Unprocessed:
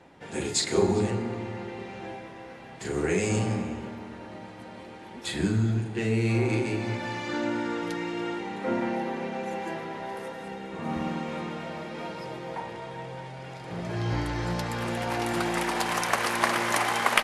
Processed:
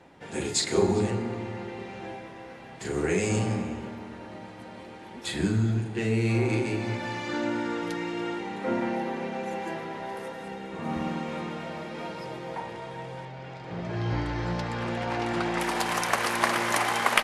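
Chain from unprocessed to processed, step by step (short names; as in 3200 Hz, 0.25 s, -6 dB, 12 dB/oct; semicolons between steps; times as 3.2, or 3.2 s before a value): 13.25–15.6 air absorption 90 m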